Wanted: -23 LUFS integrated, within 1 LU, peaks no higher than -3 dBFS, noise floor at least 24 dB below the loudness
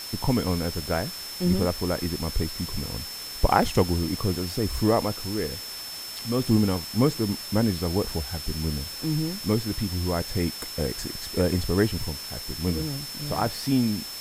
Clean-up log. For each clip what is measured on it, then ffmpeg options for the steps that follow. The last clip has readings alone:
steady tone 5300 Hz; tone level -36 dBFS; noise floor -37 dBFS; noise floor target -51 dBFS; loudness -26.5 LUFS; peak -4.5 dBFS; loudness target -23.0 LUFS
-> -af "bandreject=f=5.3k:w=30"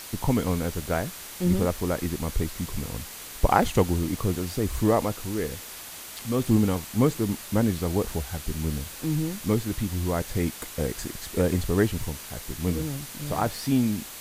steady tone none; noise floor -41 dBFS; noise floor target -51 dBFS
-> -af "afftdn=nr=10:nf=-41"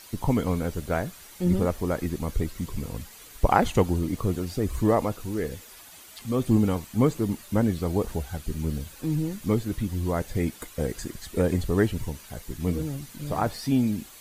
noise floor -48 dBFS; noise floor target -52 dBFS
-> -af "afftdn=nr=6:nf=-48"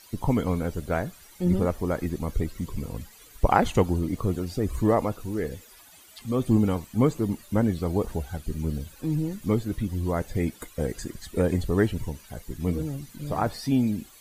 noise floor -52 dBFS; loudness -27.5 LUFS; peak -4.5 dBFS; loudness target -23.0 LUFS
-> -af "volume=4.5dB,alimiter=limit=-3dB:level=0:latency=1"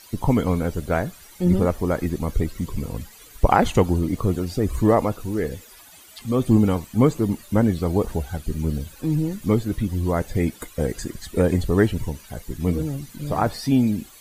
loudness -23.0 LUFS; peak -3.0 dBFS; noise floor -47 dBFS

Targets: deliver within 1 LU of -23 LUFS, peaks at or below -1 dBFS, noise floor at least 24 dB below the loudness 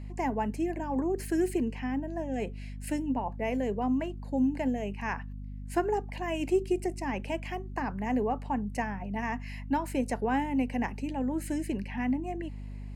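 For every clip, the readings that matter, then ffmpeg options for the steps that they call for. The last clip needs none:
hum 50 Hz; harmonics up to 250 Hz; hum level -37 dBFS; loudness -32.0 LUFS; peak -16.0 dBFS; loudness target -23.0 LUFS
-> -af "bandreject=f=50:t=h:w=6,bandreject=f=100:t=h:w=6,bandreject=f=150:t=h:w=6,bandreject=f=200:t=h:w=6,bandreject=f=250:t=h:w=6"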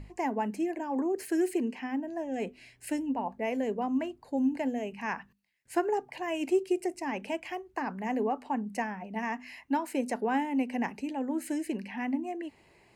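hum none; loudness -32.5 LUFS; peak -16.5 dBFS; loudness target -23.0 LUFS
-> -af "volume=9.5dB"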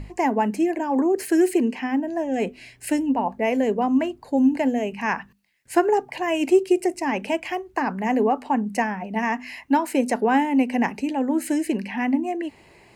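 loudness -23.0 LUFS; peak -7.0 dBFS; noise floor -53 dBFS

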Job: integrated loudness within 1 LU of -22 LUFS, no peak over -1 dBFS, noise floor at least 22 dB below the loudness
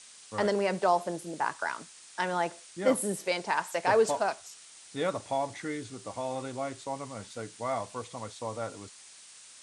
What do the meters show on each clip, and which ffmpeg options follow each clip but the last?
noise floor -52 dBFS; noise floor target -54 dBFS; loudness -31.5 LUFS; peak -12.0 dBFS; loudness target -22.0 LUFS
-> -af "afftdn=nr=6:nf=-52"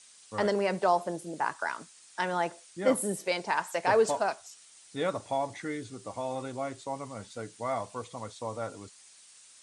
noise floor -56 dBFS; loudness -31.5 LUFS; peak -12.0 dBFS; loudness target -22.0 LUFS
-> -af "volume=9.5dB"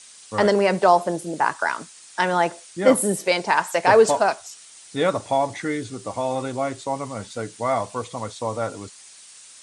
loudness -22.0 LUFS; peak -2.5 dBFS; noise floor -46 dBFS

